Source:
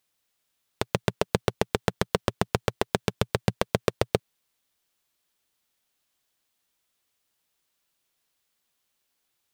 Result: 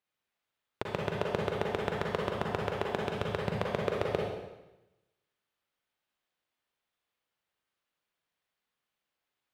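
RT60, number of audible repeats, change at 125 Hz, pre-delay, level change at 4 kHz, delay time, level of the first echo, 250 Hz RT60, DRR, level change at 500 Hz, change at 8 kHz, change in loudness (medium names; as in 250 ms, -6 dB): 0.95 s, no echo, -7.0 dB, 37 ms, -8.0 dB, no echo, no echo, 1.0 s, -1.5 dB, -3.5 dB, -15.5 dB, -5.0 dB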